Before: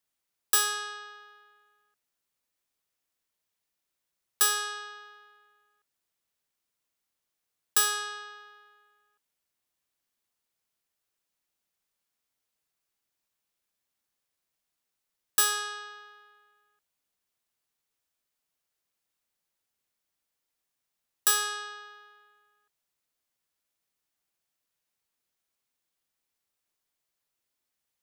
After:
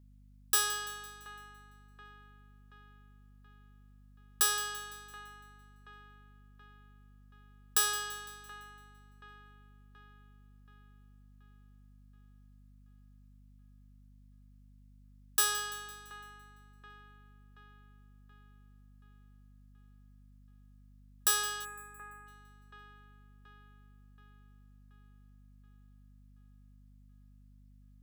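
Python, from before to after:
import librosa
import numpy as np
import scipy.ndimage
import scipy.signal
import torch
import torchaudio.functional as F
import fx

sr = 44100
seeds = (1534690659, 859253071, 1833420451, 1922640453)

y = fx.echo_split(x, sr, split_hz=2700.0, low_ms=728, high_ms=169, feedback_pct=52, wet_db=-15.0)
y = fx.spec_box(y, sr, start_s=21.65, length_s=0.62, low_hz=2700.0, high_hz=6600.0, gain_db=-25)
y = fx.add_hum(y, sr, base_hz=50, snr_db=16)
y = y * 10.0 ** (-4.0 / 20.0)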